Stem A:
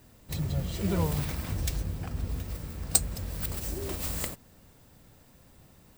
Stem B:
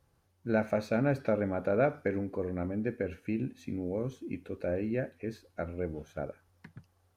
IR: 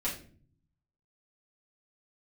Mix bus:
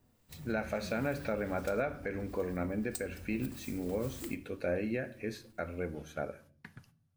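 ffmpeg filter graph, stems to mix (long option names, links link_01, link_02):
-filter_complex "[0:a]acrossover=split=1100[link_01][link_02];[link_01]aeval=exprs='val(0)*(1-0.5/2+0.5/2*cos(2*PI*1.5*n/s))':channel_layout=same[link_03];[link_02]aeval=exprs='val(0)*(1-0.5/2-0.5/2*cos(2*PI*1.5*n/s))':channel_layout=same[link_04];[link_03][link_04]amix=inputs=2:normalize=0,volume=-13dB,asplit=2[link_05][link_06];[link_06]volume=-12dB[link_07];[1:a]agate=range=-20dB:threshold=-58dB:ratio=16:detection=peak,tiltshelf=frequency=910:gain=-5,volume=1dB,asplit=2[link_08][link_09];[link_09]volume=-15dB[link_10];[2:a]atrim=start_sample=2205[link_11];[link_07][link_10]amix=inputs=2:normalize=0[link_12];[link_12][link_11]afir=irnorm=-1:irlink=0[link_13];[link_05][link_08][link_13]amix=inputs=3:normalize=0,alimiter=limit=-23dB:level=0:latency=1:release=201"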